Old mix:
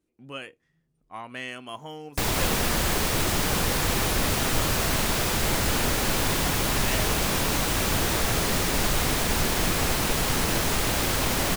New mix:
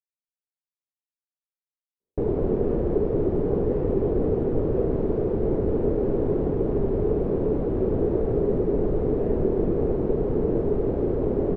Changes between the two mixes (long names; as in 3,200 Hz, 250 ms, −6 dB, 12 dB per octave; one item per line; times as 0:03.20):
speech: entry +2.35 s
master: add low-pass with resonance 420 Hz, resonance Q 4.3